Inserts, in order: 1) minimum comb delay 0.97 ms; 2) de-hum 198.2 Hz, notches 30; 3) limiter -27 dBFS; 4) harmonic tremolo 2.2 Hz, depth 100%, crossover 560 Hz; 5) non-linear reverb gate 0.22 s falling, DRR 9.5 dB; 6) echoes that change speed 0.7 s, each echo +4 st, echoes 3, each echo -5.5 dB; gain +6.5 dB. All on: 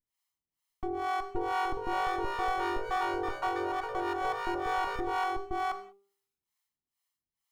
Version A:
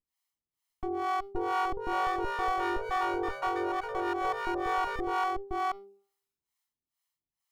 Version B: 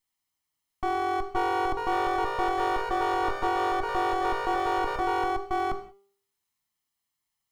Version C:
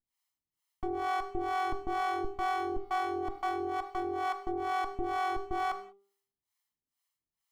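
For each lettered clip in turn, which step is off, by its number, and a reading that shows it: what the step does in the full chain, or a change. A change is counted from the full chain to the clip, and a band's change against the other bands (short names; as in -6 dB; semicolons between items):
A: 5, 250 Hz band +2.0 dB; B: 4, loudness change +5.0 LU; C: 6, 250 Hz band +1.5 dB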